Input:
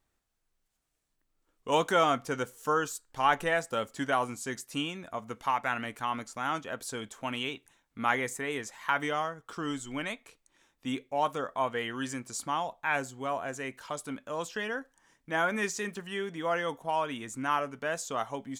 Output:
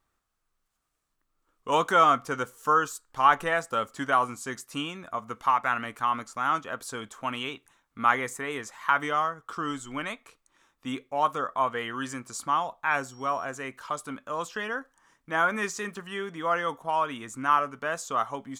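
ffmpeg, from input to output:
ffmpeg -i in.wav -filter_complex "[0:a]asettb=1/sr,asplit=3[link_01][link_02][link_03];[link_01]atrim=end=12.914[link_04];[link_02]atrim=start=12.91:end=13.45,asetpts=PTS-STARTPTS,afade=type=in:duration=0.004:curve=qsin,afade=type=out:start_time=0.536:duration=0.004:curve=qsin,aeval=exprs='val(0)+0.00178*sin(2*PI*5600*n/s)':channel_layout=same[link_05];[link_03]atrim=start=13.446[link_06];[link_04][link_05]acrossfade=duration=0.004:curve1=hsin:curve2=qsin[link_07];[link_07][link_06]acrossfade=duration=0.004:curve1=qsin:curve2=hsin,equalizer=frequency=1200:width=2.5:gain=9.5" out.wav

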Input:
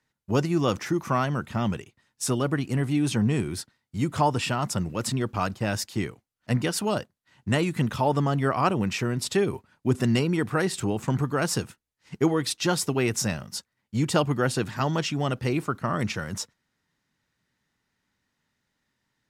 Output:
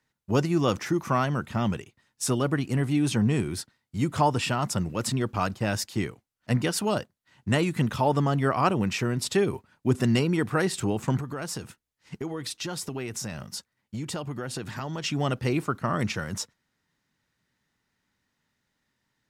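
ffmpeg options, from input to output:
ffmpeg -i in.wav -filter_complex "[0:a]asettb=1/sr,asplit=3[link_01][link_02][link_03];[link_01]atrim=end=11.194[link_04];[link_02]atrim=start=11.19:end=15.04,asetpts=PTS-STARTPTS,afade=type=in:duration=0.004:curve=qsin,afade=type=out:start_time=3.846:duration=0.004:curve=qsin,acompressor=threshold=-30dB:ratio=5:attack=3.2:release=140:knee=1:detection=peak[link_05];[link_03]atrim=start=15.036[link_06];[link_04][link_05]acrossfade=duration=0.004:curve1=hsin:curve2=qsin[link_07];[link_07][link_06]acrossfade=duration=0.004:curve1=qsin:curve2=hsin" out.wav

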